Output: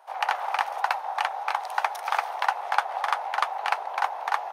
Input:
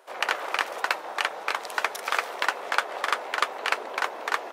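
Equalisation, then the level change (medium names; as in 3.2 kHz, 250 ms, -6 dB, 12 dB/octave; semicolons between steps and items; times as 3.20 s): resonant high-pass 800 Hz, resonance Q 5.9; band-stop 7.5 kHz, Q 7; -5.5 dB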